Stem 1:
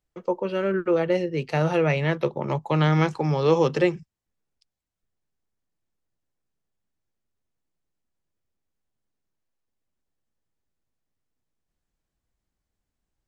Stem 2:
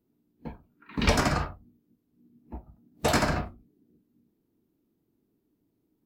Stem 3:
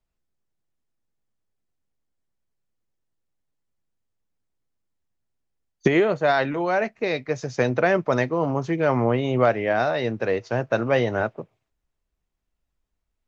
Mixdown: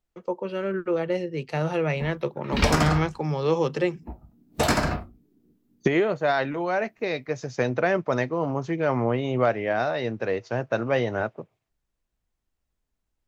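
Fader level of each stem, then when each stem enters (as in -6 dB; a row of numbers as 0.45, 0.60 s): -3.5, +2.0, -3.0 dB; 0.00, 1.55, 0.00 s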